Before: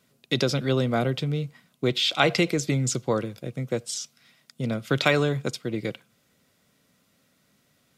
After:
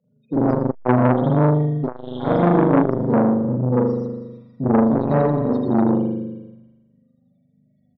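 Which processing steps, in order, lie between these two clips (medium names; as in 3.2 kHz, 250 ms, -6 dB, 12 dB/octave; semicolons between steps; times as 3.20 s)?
CVSD coder 32 kbps; peaking EQ 250 Hz +10 dB 0.36 oct; loudest bins only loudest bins 8; hard clipper -18 dBFS, distortion -14 dB; touch-sensitive phaser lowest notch 280 Hz, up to 2.6 kHz, full sweep at -26.5 dBFS; distance through air 220 m; feedback delay 321 ms, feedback 27%, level -20 dB; spring tank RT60 1.3 s, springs 40 ms, chirp 75 ms, DRR -9.5 dB; transformer saturation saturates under 740 Hz; trim +3.5 dB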